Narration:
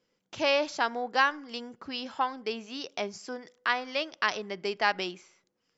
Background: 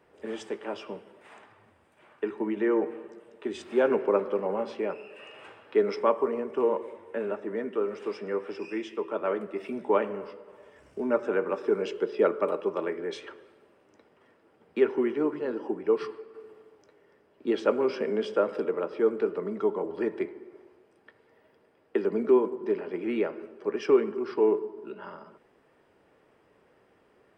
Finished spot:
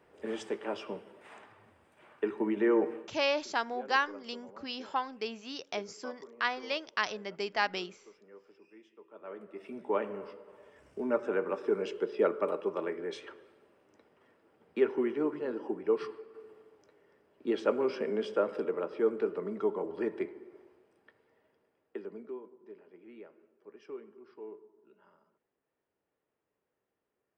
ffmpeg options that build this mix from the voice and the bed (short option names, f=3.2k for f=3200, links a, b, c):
-filter_complex "[0:a]adelay=2750,volume=-3.5dB[a];[1:a]volume=18.5dB,afade=t=out:st=2.95:d=0.21:silence=0.0749894,afade=t=in:st=9.1:d=1.2:silence=0.105925,afade=t=out:st=20.57:d=1.8:silence=0.11885[b];[a][b]amix=inputs=2:normalize=0"